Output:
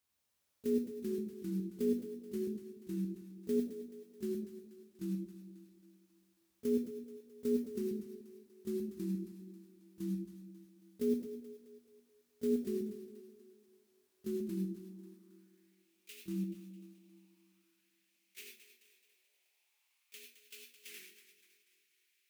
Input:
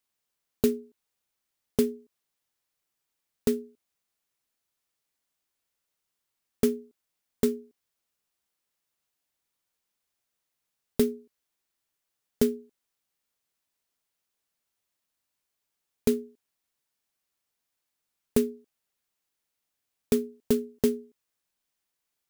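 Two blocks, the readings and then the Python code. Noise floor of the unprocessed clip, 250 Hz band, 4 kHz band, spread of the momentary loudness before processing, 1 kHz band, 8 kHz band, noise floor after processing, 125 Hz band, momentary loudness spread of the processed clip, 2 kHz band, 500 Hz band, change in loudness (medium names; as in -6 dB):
-83 dBFS, -5.5 dB, -11.0 dB, 11 LU, under -15 dB, -13.0 dB, -78 dBFS, -2.0 dB, 20 LU, no reading, -8.0 dB, -10.0 dB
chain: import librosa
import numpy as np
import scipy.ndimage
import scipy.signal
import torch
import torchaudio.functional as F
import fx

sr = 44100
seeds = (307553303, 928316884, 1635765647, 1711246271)

p1 = fx.over_compress(x, sr, threshold_db=-24.0, ratio=-0.5)
p2 = x + (p1 * 10.0 ** (-2.0 / 20.0))
p3 = fx.auto_swell(p2, sr, attack_ms=152.0)
p4 = fx.level_steps(p3, sr, step_db=17)
p5 = fx.filter_sweep_highpass(p4, sr, from_hz=75.0, to_hz=2500.0, start_s=12.98, end_s=15.88, q=3.7)
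p6 = p5 + fx.echo_split(p5, sr, split_hz=360.0, low_ms=130, high_ms=215, feedback_pct=52, wet_db=-11.5, dry=0)
p7 = fx.echo_pitch(p6, sr, ms=308, semitones=-2, count=2, db_per_echo=-3.0)
y = fx.rev_gated(p7, sr, seeds[0], gate_ms=120, shape='rising', drr_db=2.5)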